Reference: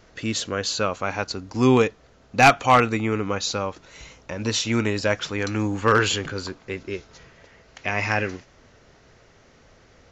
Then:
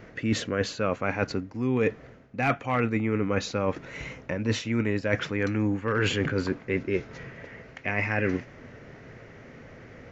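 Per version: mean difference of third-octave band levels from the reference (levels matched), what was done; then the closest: 5.5 dB: graphic EQ 125/250/500/2000/4000/8000 Hz +10/+8/+6/+10/-5/-7 dB; reverse; compressor 12:1, threshold -22 dBFS, peak gain reduction 20.5 dB; reverse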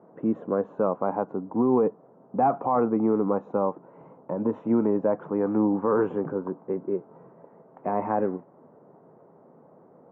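11.5 dB: elliptic band-pass 160–980 Hz, stop band 60 dB; limiter -17.5 dBFS, peak gain reduction 11.5 dB; gain +4 dB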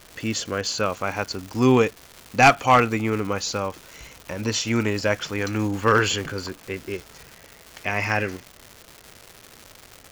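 4.0 dB: notch 3800 Hz, Q 8.2; crackle 360/s -31 dBFS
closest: third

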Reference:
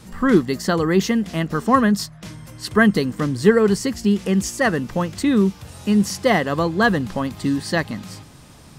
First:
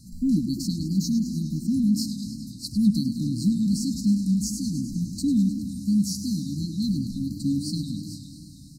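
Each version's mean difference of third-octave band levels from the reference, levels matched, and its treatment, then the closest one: 14.0 dB: brick-wall FIR band-stop 310–3900 Hz; echo 0.68 s -23.5 dB; warbling echo 0.103 s, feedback 76%, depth 121 cents, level -10.5 dB; gain -4 dB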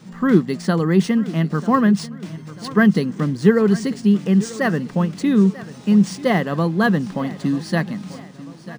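5.0 dB: resonant low shelf 110 Hz -13 dB, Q 3; on a send: feedback echo 0.941 s, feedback 45%, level -17 dB; on the sum: decimation joined by straight lines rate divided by 3×; gain -2.5 dB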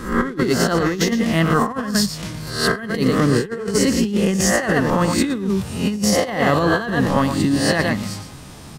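9.0 dB: spectral swells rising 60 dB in 0.56 s; outdoor echo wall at 20 m, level -8 dB; negative-ratio compressor -19 dBFS, ratio -0.5; gain +1.5 dB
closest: second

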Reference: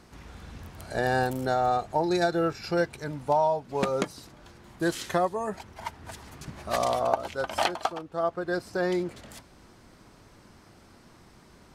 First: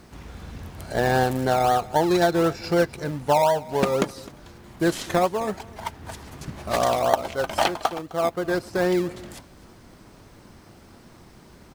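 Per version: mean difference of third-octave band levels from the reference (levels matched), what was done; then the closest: 3.0 dB: in parallel at -8 dB: decimation with a swept rate 24×, swing 60% 3.9 Hz; on the sum: echo 0.258 s -21 dB; requantised 12-bit, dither triangular; gain +3 dB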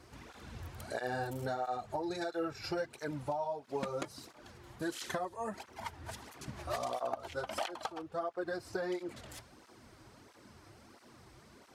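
5.0 dB: bell 170 Hz -10.5 dB 0.26 oct; compressor 5:1, threshold -31 dBFS, peak gain reduction 12 dB; tape flanging out of phase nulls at 1.5 Hz, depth 5 ms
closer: first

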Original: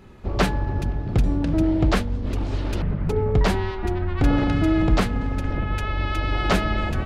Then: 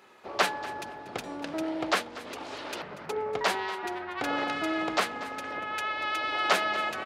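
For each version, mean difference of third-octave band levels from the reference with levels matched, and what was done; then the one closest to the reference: 8.5 dB: HPF 630 Hz 12 dB/oct; feedback echo 0.238 s, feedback 16%, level -16.5 dB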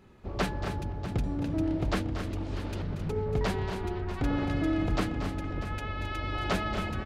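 2.5 dB: low shelf 64 Hz -6 dB; on a send: tapped delay 0.233/0.265/0.643 s -10.5/-9.5/-13.5 dB; on the sum: gain -8.5 dB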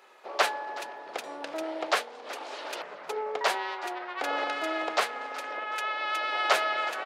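12.5 dB: HPF 550 Hz 24 dB/oct; frequency-shifting echo 0.373 s, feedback 37%, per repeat +120 Hz, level -17.5 dB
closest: second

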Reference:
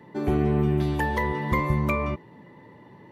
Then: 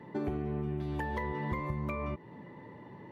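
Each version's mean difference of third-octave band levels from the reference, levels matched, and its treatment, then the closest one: 4.5 dB: compressor 10:1, threshold -31 dBFS, peak gain reduction 13 dB; high shelf 4300 Hz -9.5 dB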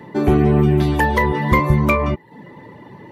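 1.5 dB: reverb removal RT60 0.5 s; in parallel at -8.5 dB: soft clip -23 dBFS, distortion -11 dB; on the sum: gain +8 dB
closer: second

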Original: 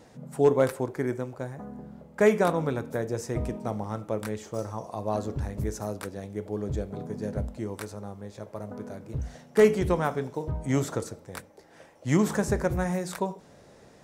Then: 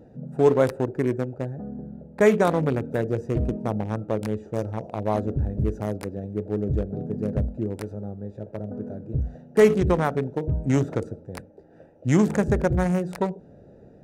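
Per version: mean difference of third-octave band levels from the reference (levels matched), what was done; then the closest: 5.0 dB: Wiener smoothing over 41 samples; in parallel at +1.5 dB: limiter -20.5 dBFS, peak gain reduction 10 dB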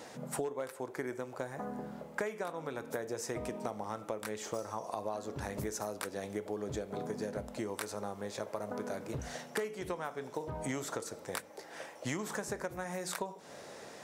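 8.5 dB: HPF 590 Hz 6 dB/oct; compressor 20:1, threshold -42 dBFS, peak gain reduction 25 dB; gain +8.5 dB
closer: first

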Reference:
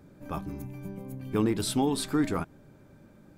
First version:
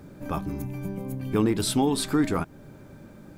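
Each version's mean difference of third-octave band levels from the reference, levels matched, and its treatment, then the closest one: 2.5 dB: in parallel at +1 dB: compressor, threshold -38 dBFS, peak gain reduction 15.5 dB; on the sum: bit-crush 12-bit; gain +1.5 dB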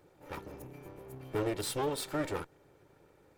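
5.0 dB: minimum comb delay 2.2 ms; low shelf 100 Hz -11.5 dB; gain -3.5 dB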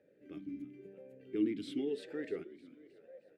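8.5 dB: frequency-shifting echo 0.313 s, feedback 56%, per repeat +74 Hz, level -18.5 dB; vowel sweep e-i 0.94 Hz; gain +1 dB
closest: first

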